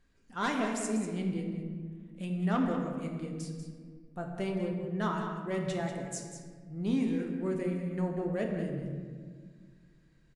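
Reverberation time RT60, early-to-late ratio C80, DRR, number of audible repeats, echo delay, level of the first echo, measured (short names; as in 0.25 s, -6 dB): 1.7 s, 4.0 dB, 1.0 dB, 1, 0.191 s, -9.0 dB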